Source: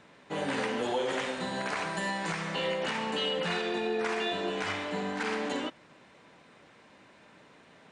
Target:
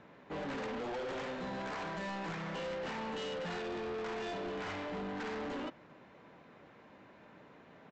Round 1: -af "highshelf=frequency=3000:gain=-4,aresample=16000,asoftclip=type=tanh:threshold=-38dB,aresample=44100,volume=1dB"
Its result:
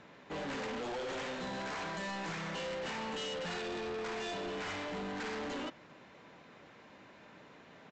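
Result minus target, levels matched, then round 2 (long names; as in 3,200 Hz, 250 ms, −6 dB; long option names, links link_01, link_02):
8,000 Hz band +6.5 dB
-af "highshelf=frequency=3000:gain=-16,aresample=16000,asoftclip=type=tanh:threshold=-38dB,aresample=44100,volume=1dB"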